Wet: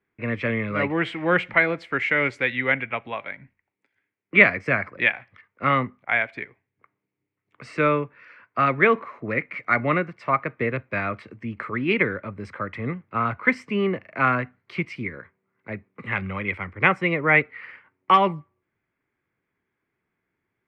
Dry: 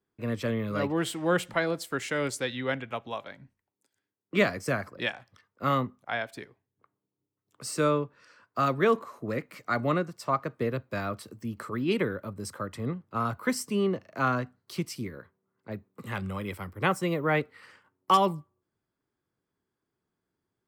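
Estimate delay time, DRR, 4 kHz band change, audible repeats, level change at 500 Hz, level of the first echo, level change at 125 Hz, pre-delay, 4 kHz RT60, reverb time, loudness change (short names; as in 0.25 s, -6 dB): none, none, +1.5 dB, none, +3.5 dB, none, +3.0 dB, none, none, none, +7.0 dB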